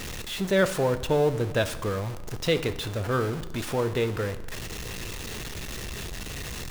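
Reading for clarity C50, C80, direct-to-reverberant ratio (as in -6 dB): 13.5 dB, 16.0 dB, 10.0 dB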